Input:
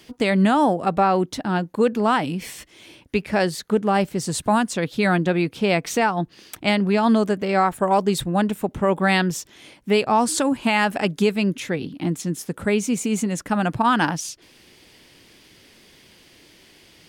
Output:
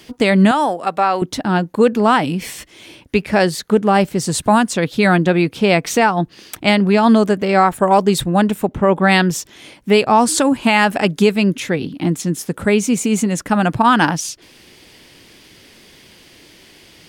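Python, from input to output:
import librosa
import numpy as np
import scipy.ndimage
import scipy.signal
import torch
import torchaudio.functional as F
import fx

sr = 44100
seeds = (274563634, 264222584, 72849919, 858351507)

y = fx.highpass(x, sr, hz=870.0, slope=6, at=(0.51, 1.22))
y = fx.high_shelf(y, sr, hz=fx.line((8.67, 3500.0), (9.1, 6500.0)), db=-10.5, at=(8.67, 9.1), fade=0.02)
y = y * librosa.db_to_amplitude(6.0)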